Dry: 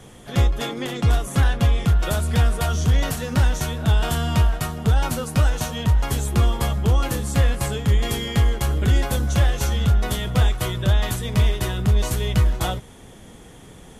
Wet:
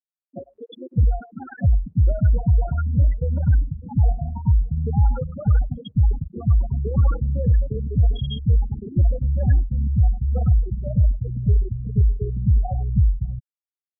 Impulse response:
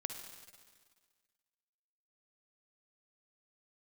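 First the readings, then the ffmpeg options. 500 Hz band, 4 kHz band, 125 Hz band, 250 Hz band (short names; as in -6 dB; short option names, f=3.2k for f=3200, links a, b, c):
-6.0 dB, -15.5 dB, +0.5 dB, -2.5 dB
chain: -filter_complex "[0:a]afftfilt=real='re*gte(hypot(re,im),0.251)':imag='im*gte(hypot(re,im),0.251)':win_size=1024:overlap=0.75,acrossover=split=260|990[a][b][c];[c]adelay=100[d];[a]adelay=600[e];[e][b][d]amix=inputs=3:normalize=0,volume=1dB"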